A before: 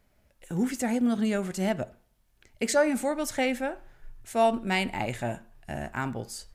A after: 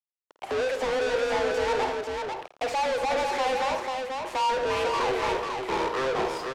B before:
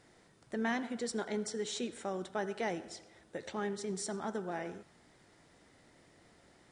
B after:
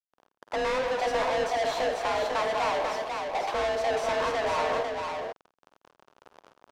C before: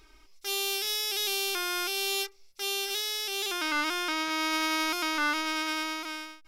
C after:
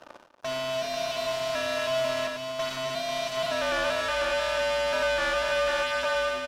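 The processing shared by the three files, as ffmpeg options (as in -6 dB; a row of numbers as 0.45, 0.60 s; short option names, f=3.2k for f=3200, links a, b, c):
-filter_complex "[0:a]highpass=f=75:w=0.5412,highpass=f=75:w=1.3066,afreqshift=260,asplit=2[a][b];[b]acompressor=threshold=-36dB:ratio=6,volume=-1.5dB[c];[a][c]amix=inputs=2:normalize=0,acrusher=bits=7:mix=0:aa=0.000001,equalizer=f=2k:t=o:w=1:g=-11,equalizer=f=4k:t=o:w=1:g=-7,equalizer=f=8k:t=o:w=1:g=-9,asplit=2[d][e];[e]highpass=f=720:p=1,volume=38dB,asoftclip=type=tanh:threshold=-13dB[f];[d][f]amix=inputs=2:normalize=0,lowpass=f=1.7k:p=1,volume=-6dB,adynamicsmooth=sensitivity=1:basefreq=2.3k,crystalizer=i=4.5:c=0,asplit=2[g][h];[h]aecho=0:1:51|83|237|494:0.266|0.126|0.237|0.596[i];[g][i]amix=inputs=2:normalize=0,volume=-8dB"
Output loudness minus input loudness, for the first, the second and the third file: +1.0, +10.0, +1.5 LU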